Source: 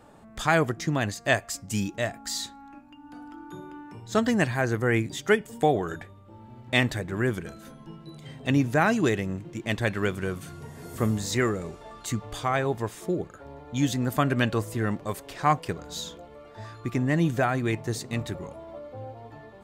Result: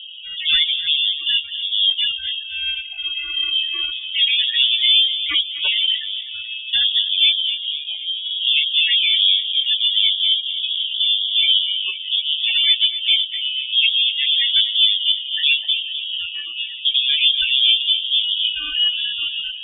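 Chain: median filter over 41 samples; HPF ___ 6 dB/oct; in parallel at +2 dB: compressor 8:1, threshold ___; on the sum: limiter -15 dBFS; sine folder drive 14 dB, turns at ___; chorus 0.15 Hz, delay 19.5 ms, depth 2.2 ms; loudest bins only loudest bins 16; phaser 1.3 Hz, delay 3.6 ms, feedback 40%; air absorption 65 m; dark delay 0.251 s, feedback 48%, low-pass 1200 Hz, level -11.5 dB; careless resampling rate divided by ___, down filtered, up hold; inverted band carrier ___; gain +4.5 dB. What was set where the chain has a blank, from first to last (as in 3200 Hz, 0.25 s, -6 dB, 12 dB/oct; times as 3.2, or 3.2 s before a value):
480 Hz, -42 dBFS, -15 dBFS, 8×, 3500 Hz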